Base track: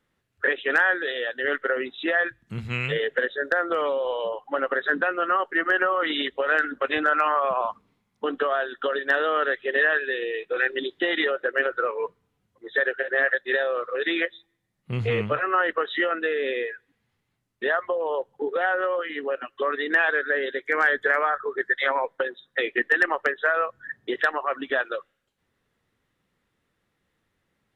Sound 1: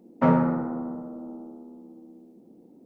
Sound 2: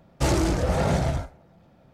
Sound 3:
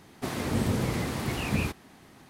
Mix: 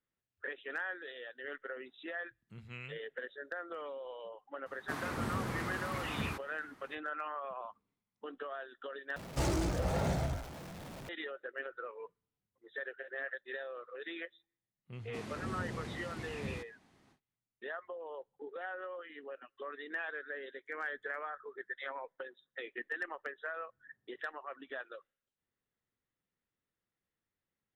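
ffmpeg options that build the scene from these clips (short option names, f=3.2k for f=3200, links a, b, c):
-filter_complex "[3:a]asplit=2[a][b];[0:a]volume=-18.5dB[c];[a]equalizer=f=1.3k:t=o:w=1.3:g=10[d];[2:a]aeval=exprs='val(0)+0.5*0.0282*sgn(val(0))':c=same[e];[b]lowpass=8.6k[f];[c]asplit=2[g][h];[g]atrim=end=9.164[i];[e]atrim=end=1.93,asetpts=PTS-STARTPTS,volume=-11dB[j];[h]atrim=start=11.086[k];[d]atrim=end=2.29,asetpts=PTS-STARTPTS,volume=-11dB,afade=t=in:d=0.004:c=hsin,afade=t=out:st=2.286:d=0.004:c=hsin,adelay=4660[l];[f]atrim=end=2.29,asetpts=PTS-STARTPTS,volume=-13.5dB,afade=t=in:d=0.1,afade=t=out:st=2.19:d=0.1,adelay=14910[m];[i][j]acrossfade=d=0.004:c1=hsin:c2=hsin[n];[n][k]acrossfade=d=0.004:c1=hsin:c2=hsin[o];[o][l][m]amix=inputs=3:normalize=0"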